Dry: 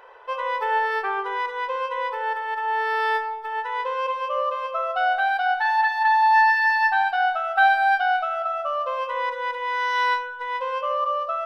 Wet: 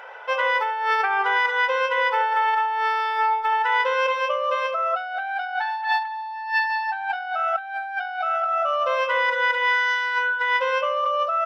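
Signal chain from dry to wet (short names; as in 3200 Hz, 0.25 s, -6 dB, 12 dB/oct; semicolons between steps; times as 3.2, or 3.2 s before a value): comb 1.4 ms, depth 55%; negative-ratio compressor -27 dBFS, ratio -1; reverb RT60 0.20 s, pre-delay 3 ms, DRR 22 dB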